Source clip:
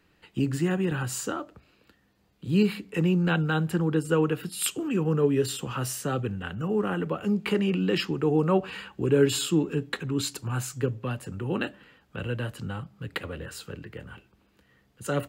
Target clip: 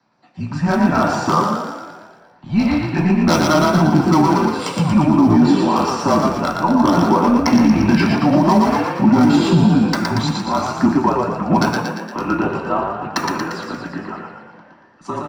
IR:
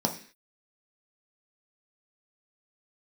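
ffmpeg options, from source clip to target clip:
-filter_complex "[0:a]lowpass=f=7100:w=0.5412,lowpass=f=7100:w=1.3066,acrossover=split=560 2100:gain=0.178 1 0.2[s0][s1][s2];[s0][s1][s2]amix=inputs=3:normalize=0,acrossover=split=170|3000[s3][s4][s5];[s4]dynaudnorm=f=120:g=9:m=5.62[s6];[s3][s6][s5]amix=inputs=3:normalize=0,afreqshift=-170,volume=5.31,asoftclip=hard,volume=0.188,crystalizer=i=6.5:c=0,aphaser=in_gain=1:out_gain=1:delay=1.5:decay=0.26:speed=0.55:type=sinusoidal,asplit=9[s7][s8][s9][s10][s11][s12][s13][s14][s15];[s8]adelay=116,afreqshift=42,volume=0.631[s16];[s9]adelay=232,afreqshift=84,volume=0.372[s17];[s10]adelay=348,afreqshift=126,volume=0.219[s18];[s11]adelay=464,afreqshift=168,volume=0.13[s19];[s12]adelay=580,afreqshift=210,volume=0.0767[s20];[s13]adelay=696,afreqshift=252,volume=0.0452[s21];[s14]adelay=812,afreqshift=294,volume=0.0266[s22];[s15]adelay=928,afreqshift=336,volume=0.0157[s23];[s7][s16][s17][s18][s19][s20][s21][s22][s23]amix=inputs=9:normalize=0[s24];[1:a]atrim=start_sample=2205[s25];[s24][s25]afir=irnorm=-1:irlink=0,alimiter=level_in=0.631:limit=0.891:release=50:level=0:latency=1,volume=0.668"

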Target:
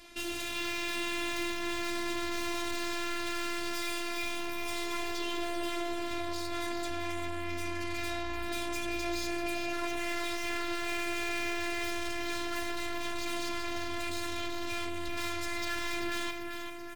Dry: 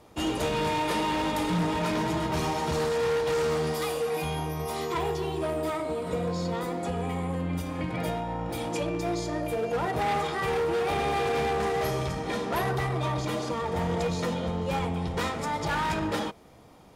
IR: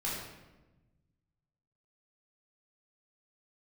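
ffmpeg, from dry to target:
-af "equalizer=f=500:t=o:w=1:g=-10,equalizer=f=1000:t=o:w=1:g=-4,equalizer=f=2000:t=o:w=1:g=8,equalizer=f=4000:t=o:w=1:g=7,equalizer=f=8000:t=o:w=1:g=3,aeval=exprs='(tanh(100*val(0)+0.35)-tanh(0.35))/100':c=same,afftfilt=real='hypot(re,im)*cos(PI*b)':imag='0':win_size=512:overlap=0.75,aecho=1:1:389|778|1167|1556|1945|2334|2723:0.447|0.255|0.145|0.0827|0.0472|0.0269|0.0153,volume=2.24"

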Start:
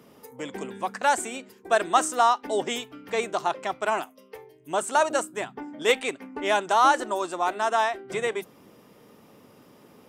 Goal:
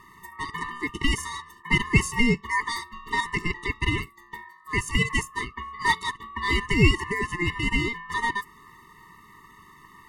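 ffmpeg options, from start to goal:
-filter_complex "[0:a]aeval=exprs='val(0)*sin(2*PI*1400*n/s)':c=same,asplit=2[s0][s1];[s1]acompressor=threshold=0.02:ratio=6,volume=0.794[s2];[s0][s2]amix=inputs=2:normalize=0,lowshelf=f=260:g=9.5,afftfilt=real='re*eq(mod(floor(b*sr/1024/440),2),0)':imag='im*eq(mod(floor(b*sr/1024/440),2),0)':win_size=1024:overlap=0.75,volume=1.19"

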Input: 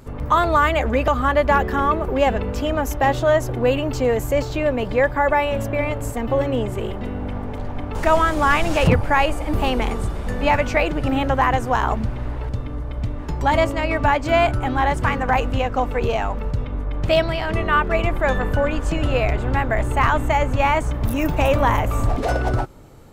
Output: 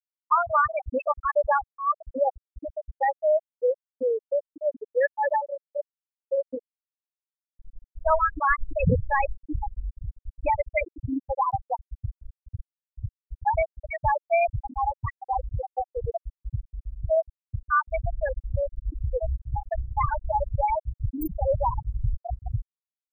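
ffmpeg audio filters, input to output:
-af "acrusher=bits=9:mode=log:mix=0:aa=0.000001,crystalizer=i=3.5:c=0,afftfilt=real='re*gte(hypot(re,im),0.891)':imag='im*gte(hypot(re,im),0.891)':win_size=1024:overlap=0.75,volume=0.596"

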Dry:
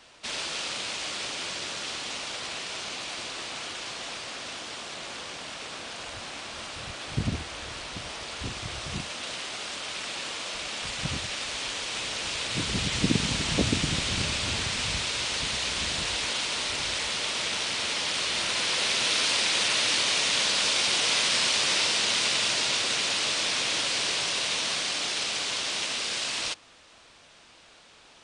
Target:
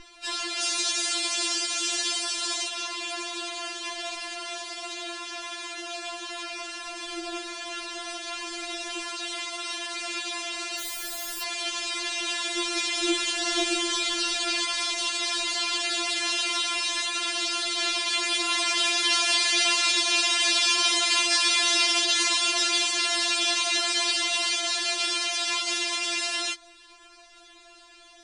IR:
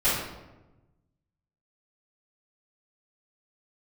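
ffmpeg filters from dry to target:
-filter_complex "[0:a]asettb=1/sr,asplit=3[s0][s1][s2];[s0]atrim=end=0.614[s3];[s1]atrim=start=0.61:end=2.68,asetpts=PTS-STARTPTS,afade=t=in:d=0.004:c=qsin,afade=t=out:st=2.066:d=0.004:c=qsin,bass=f=250:g=6,treble=f=4000:g=9[s4];[s2]atrim=start=2.676[s5];[s3][s4]acrossfade=d=0.004:c1=hsin:c2=qsin[s6];[s6][s5]acrossfade=d=0.004:c1=qsin:c2=hsin,asettb=1/sr,asplit=3[s7][s8][s9];[s7]atrim=end=10.794[s10];[s8]atrim=start=10.79:end=11.42,asetpts=PTS-STARTPTS,afade=t=in:d=0.004:c=qsin,afade=t=out:st=0.626:d=0.004:c=qsin,aeval=exprs='(mod(35.5*val(0)+1,2)-1)/35.5':c=same[s11];[s9]atrim=start=11.416[s12];[s10][s11]acrossfade=d=0.004:c1=hsin:c2=qsin[s13];[s13][s12]acrossfade=d=0.004:c1=qsin:c2=hsin,aeval=exprs='val(0)+0.0112*(sin(2*PI*60*n/s)+sin(2*PI*2*60*n/s)/2+sin(2*PI*3*60*n/s)/3+sin(2*PI*4*60*n/s)/4+sin(2*PI*5*60*n/s)/5)':c=same,afftfilt=real='re*4*eq(mod(b,16),0)':imag='im*4*eq(mod(b,16),0)':win_size=2048:overlap=0.75,volume=1.68"

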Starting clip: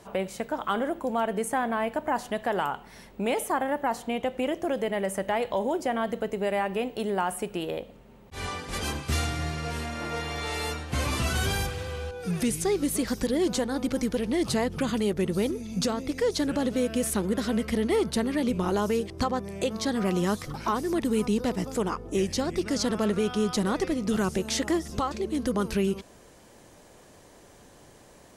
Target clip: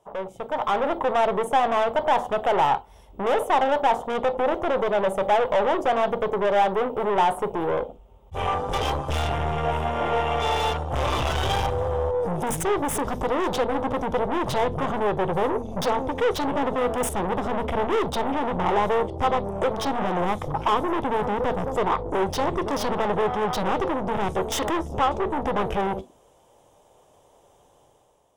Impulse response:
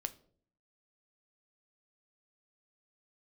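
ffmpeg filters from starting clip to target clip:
-filter_complex "[0:a]afwtdn=0.0141,equalizer=f=1800:w=1.8:g=-12,aeval=exprs='(tanh(56.2*val(0)+0.45)-tanh(0.45))/56.2':c=same,dynaudnorm=f=130:g=9:m=2.66,asplit=2[s0][s1];[s1]highpass=f=240:w=0.5412,highpass=f=240:w=1.3066,equalizer=f=290:t=q:w=4:g=-7,equalizer=f=850:t=q:w=4:g=6,equalizer=f=1600:t=q:w=4:g=-5,equalizer=f=2500:t=q:w=4:g=-7,equalizer=f=3600:t=q:w=4:g=5,lowpass=f=4100:w=0.5412,lowpass=f=4100:w=1.3066[s2];[1:a]atrim=start_sample=2205,atrim=end_sample=3087[s3];[s2][s3]afir=irnorm=-1:irlink=0,volume=1.58[s4];[s0][s4]amix=inputs=2:normalize=0,volume=1.26"

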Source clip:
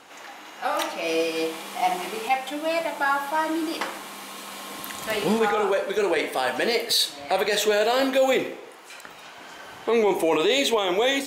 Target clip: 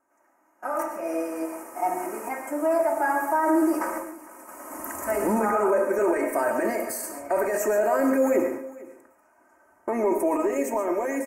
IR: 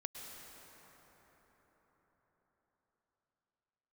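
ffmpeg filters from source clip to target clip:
-filter_complex "[0:a]agate=range=0.126:threshold=0.0158:ratio=16:detection=peak,bandreject=f=50:t=h:w=6,bandreject=f=100:t=h:w=6,bandreject=f=150:t=h:w=6,bandreject=f=200:t=h:w=6,bandreject=f=250:t=h:w=6,bandreject=f=300:t=h:w=6,aecho=1:1:3.2:0.79,dynaudnorm=f=430:g=11:m=3.76,alimiter=limit=0.316:level=0:latency=1:release=13,asuperstop=centerf=3600:order=4:qfactor=0.56,aecho=1:1:453:0.0944[s0];[1:a]atrim=start_sample=2205,atrim=end_sample=6615[s1];[s0][s1]afir=irnorm=-1:irlink=0"

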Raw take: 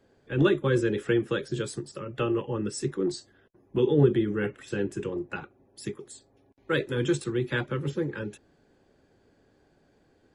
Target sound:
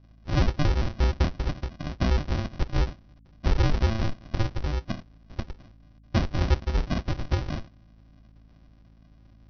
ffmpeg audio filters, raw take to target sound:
-af "highpass=f=260:w=0.5412,highpass=f=260:w=1.3066,alimiter=limit=0.126:level=0:latency=1:release=255,aresample=11025,acrusher=samples=27:mix=1:aa=0.000001,aresample=44100,aeval=exprs='val(0)+0.00112*(sin(2*PI*50*n/s)+sin(2*PI*2*50*n/s)/2+sin(2*PI*3*50*n/s)/3+sin(2*PI*4*50*n/s)/4+sin(2*PI*5*50*n/s)/5)':c=same,asetrate=48069,aresample=44100,volume=2"

